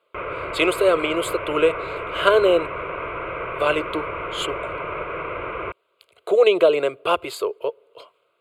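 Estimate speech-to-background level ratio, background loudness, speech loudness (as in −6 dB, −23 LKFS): 8.5 dB, −29.5 LKFS, −21.0 LKFS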